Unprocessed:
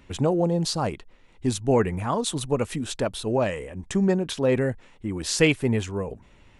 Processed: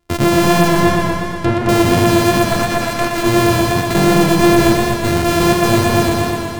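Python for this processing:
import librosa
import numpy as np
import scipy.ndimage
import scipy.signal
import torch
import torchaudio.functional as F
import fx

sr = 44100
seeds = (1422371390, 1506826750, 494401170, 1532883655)

y = np.r_[np.sort(x[:len(x) // 128 * 128].reshape(-1, 128), axis=1).ravel(), x[len(x) // 128 * 128:]]
y = fx.weighting(y, sr, curve='A', at=(2.45, 3.18))
y = fx.leveller(y, sr, passes=5)
y = fx.env_lowpass_down(y, sr, base_hz=2200.0, full_db=-12.5, at=(0.67, 1.69))
y = fx.echo_feedback(y, sr, ms=216, feedback_pct=32, wet_db=-5)
y = fx.echo_warbled(y, sr, ms=121, feedback_pct=73, rate_hz=2.8, cents=58, wet_db=-6.0)
y = y * librosa.db_to_amplitude(-3.0)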